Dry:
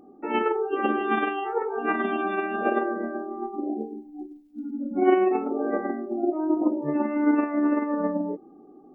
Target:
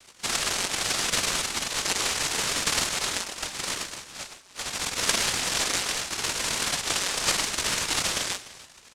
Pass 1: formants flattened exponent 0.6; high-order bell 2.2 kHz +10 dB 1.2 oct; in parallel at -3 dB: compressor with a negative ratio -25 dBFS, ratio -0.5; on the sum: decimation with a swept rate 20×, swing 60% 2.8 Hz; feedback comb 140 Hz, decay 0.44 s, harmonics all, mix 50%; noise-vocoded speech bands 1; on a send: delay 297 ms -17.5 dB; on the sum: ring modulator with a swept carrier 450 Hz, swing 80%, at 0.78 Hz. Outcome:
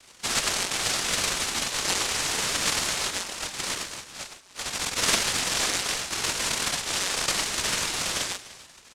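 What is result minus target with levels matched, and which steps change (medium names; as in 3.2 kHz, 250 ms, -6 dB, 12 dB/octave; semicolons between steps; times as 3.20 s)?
decimation with a swept rate: distortion -8 dB
change: decimation with a swept rate 48×, swing 60% 2.8 Hz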